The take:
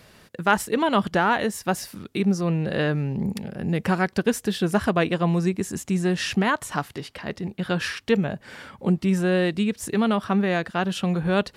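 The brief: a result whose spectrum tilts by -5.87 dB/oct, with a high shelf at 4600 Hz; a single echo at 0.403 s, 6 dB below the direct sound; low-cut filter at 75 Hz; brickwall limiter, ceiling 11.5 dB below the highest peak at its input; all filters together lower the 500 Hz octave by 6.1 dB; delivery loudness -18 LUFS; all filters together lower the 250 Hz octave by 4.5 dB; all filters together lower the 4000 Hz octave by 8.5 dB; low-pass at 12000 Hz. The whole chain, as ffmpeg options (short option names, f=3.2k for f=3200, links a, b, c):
-af "highpass=75,lowpass=12k,equalizer=f=250:t=o:g=-5.5,equalizer=f=500:t=o:g=-6,equalizer=f=4k:t=o:g=-8,highshelf=f=4.6k:g=-8.5,alimiter=limit=-21dB:level=0:latency=1,aecho=1:1:403:0.501,volume=12.5dB"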